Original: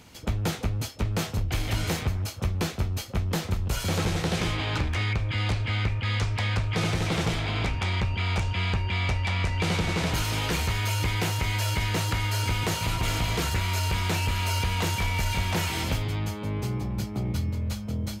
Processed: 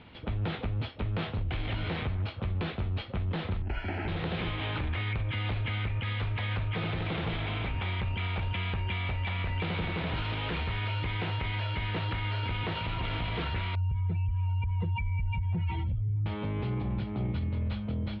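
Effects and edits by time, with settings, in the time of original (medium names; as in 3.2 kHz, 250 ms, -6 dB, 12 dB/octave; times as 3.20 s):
3.62–4.08 s: static phaser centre 750 Hz, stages 8
13.75–16.26 s: spectral contrast enhancement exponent 2.5
whole clip: steep low-pass 3.7 kHz 48 dB/octave; peak limiter -24.5 dBFS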